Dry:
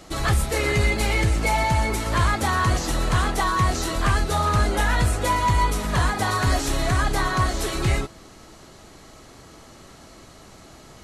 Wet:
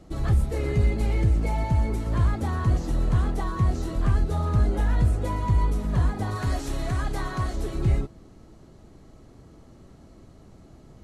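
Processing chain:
tilt shelving filter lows +9 dB, about 630 Hz, from 0:06.35 lows +4 dB, from 0:07.55 lows +9 dB
level −8 dB

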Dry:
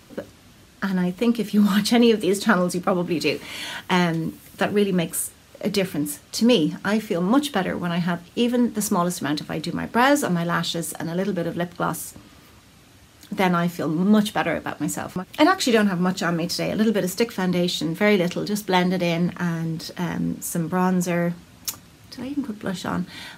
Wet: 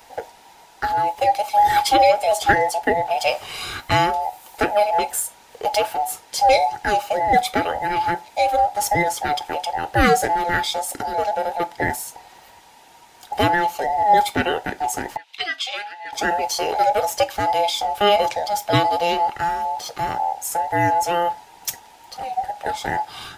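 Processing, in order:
frequency inversion band by band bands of 1,000 Hz
0:15.17–0:16.13: resonant band-pass 3,200 Hz, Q 1.9
level +2 dB

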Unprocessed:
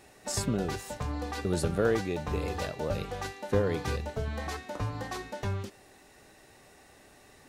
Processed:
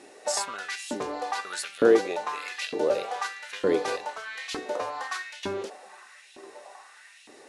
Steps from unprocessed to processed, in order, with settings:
elliptic low-pass filter 11,000 Hz, stop band 40 dB
echo through a band-pass that steps 409 ms, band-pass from 270 Hz, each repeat 0.7 octaves, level −10.5 dB
auto-filter high-pass saw up 1.1 Hz 270–3,200 Hz
level +4.5 dB

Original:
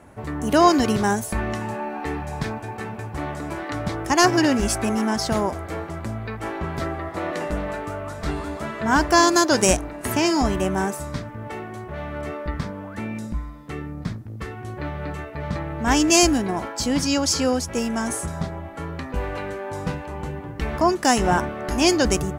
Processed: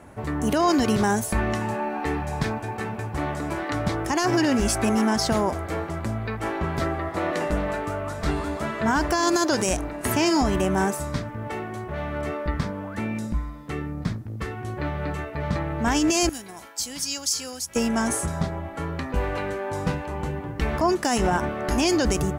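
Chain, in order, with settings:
0:16.29–0:17.76: first-order pre-emphasis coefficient 0.9
brickwall limiter −14.5 dBFS, peak gain reduction 11.5 dB
level +1.5 dB

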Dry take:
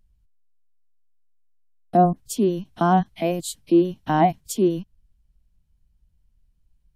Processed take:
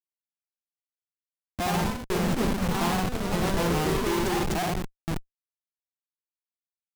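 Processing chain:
slices reordered back to front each 175 ms, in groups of 3
high-shelf EQ 6,900 Hz −10.5 dB
on a send: flutter between parallel walls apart 10 metres, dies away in 0.49 s
on the sum: comparator with hysteresis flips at −28 dBFS
delay with pitch and tempo change per echo 241 ms, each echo +2 semitones, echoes 3
level −3.5 dB

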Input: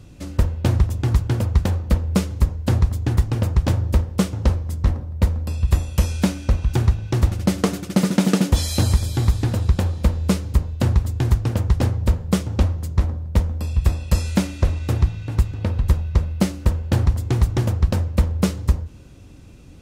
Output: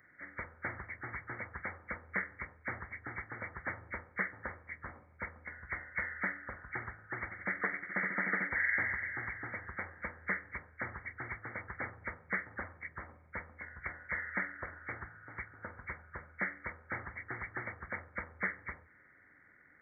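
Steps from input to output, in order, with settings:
hearing-aid frequency compression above 1,200 Hz 4 to 1
first difference
level +4 dB

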